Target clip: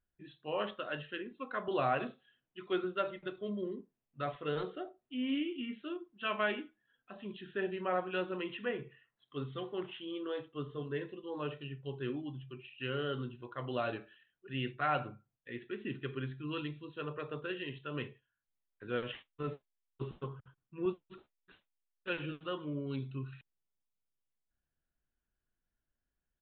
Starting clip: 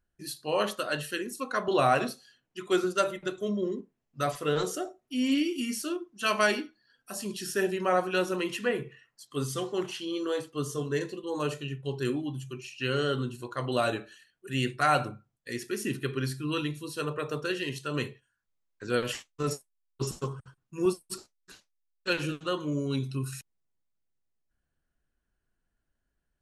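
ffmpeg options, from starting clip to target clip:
ffmpeg -i in.wav -af "aresample=8000,aresample=44100,volume=-8dB" out.wav

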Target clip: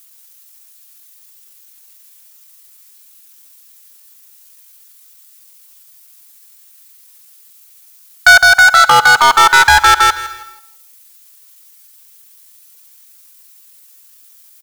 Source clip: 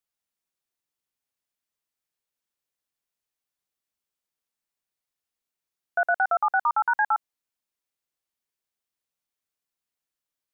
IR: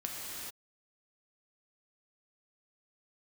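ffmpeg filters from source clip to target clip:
-filter_complex "[0:a]aeval=exprs='if(lt(val(0),0),0.708*val(0),val(0))':channel_layout=same,highpass=frequency=830:width=0.5412,highpass=frequency=830:width=1.3066,aecho=1:1:4.6:0.33,atempo=0.72,crystalizer=i=4:c=0,asoftclip=type=hard:threshold=-28.5dB,aecho=1:1:161|322|483:0.473|0.0852|0.0153,asplit=2[link_01][link_02];[1:a]atrim=start_sample=2205,adelay=47[link_03];[link_02][link_03]afir=irnorm=-1:irlink=0,volume=-24dB[link_04];[link_01][link_04]amix=inputs=2:normalize=0,alimiter=level_in=28.5dB:limit=-1dB:release=50:level=0:latency=1,volume=-1dB"

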